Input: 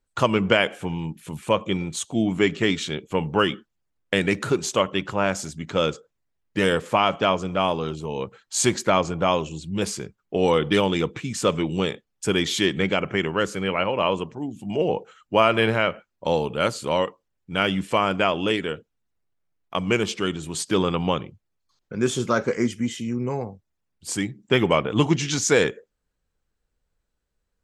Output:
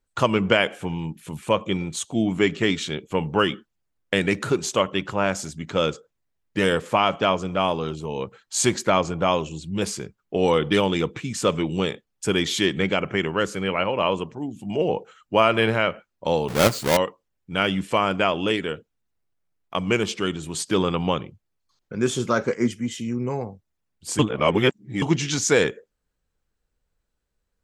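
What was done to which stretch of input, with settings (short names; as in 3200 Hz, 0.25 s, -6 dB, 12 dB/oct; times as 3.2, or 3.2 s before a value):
16.48–16.97 half-waves squared off
22.54–22.98 three-band expander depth 100%
24.19–25.02 reverse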